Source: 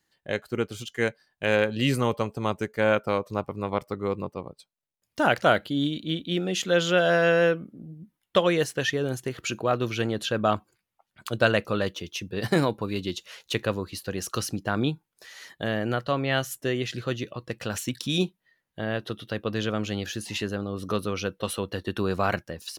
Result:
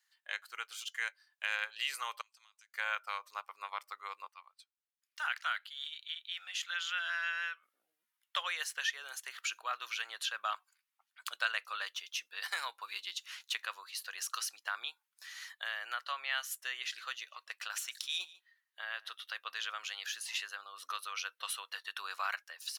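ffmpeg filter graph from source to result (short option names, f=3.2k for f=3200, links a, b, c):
-filter_complex "[0:a]asettb=1/sr,asplit=3[a][b][c];[a]atrim=end=2.214[d];[b]atrim=start=2.21:end=2.74,asetpts=PTS-STARTPTS,afade=t=in:d=0.004:c=qsin,afade=t=out:st=0.526:d=0.004:c=qsin,bandpass=f=5.4k:t=q:w=1,acompressor=threshold=-56dB:ratio=8:attack=3.2:release=140:knee=1:detection=peak[e];[c]atrim=start=2.736[f];[d][e]acrossfade=d=0.004:c1=hsin:c2=qsin[g];[g][f]acrossfade=d=0.004:c1=qsin:c2=hsin,asettb=1/sr,asplit=3[h][i][j];[h]atrim=end=4.284[k];[i]atrim=start=4.28:end=7.63,asetpts=PTS-STARTPTS,afade=t=in:d=0.004:c=qsin,afade=t=out:st=3.346:d=0.004:c=qsin,highpass=1.3k,highshelf=f=3.5k:g=-7.5[l];[j]atrim=start=7.626[m];[k][l]acrossfade=d=0.004:c1=hsin:c2=qsin[n];[n][m]acrossfade=d=0.004:c1=qsin:c2=hsin,asettb=1/sr,asplit=3[o][p][q];[o]atrim=end=17.154[r];[p]atrim=start=17.15:end=19.19,asetpts=PTS-STARTPTS,afade=t=in:d=0.004:c=qsin,afade=t=out:st=2.036:d=0.004:c=qsin,tremolo=f=210:d=0.261,aecho=1:1:146:0.075,atrim=end_sample=89964[s];[q]atrim=start=19.186[t];[r][s]acrossfade=d=0.004:c1=hsin:c2=qsin[u];[u][t]acrossfade=d=0.004:c1=qsin:c2=hsin,highpass=f=1.1k:w=0.5412,highpass=f=1.1k:w=1.3066,acompressor=threshold=-36dB:ratio=1.5,volume=-2dB"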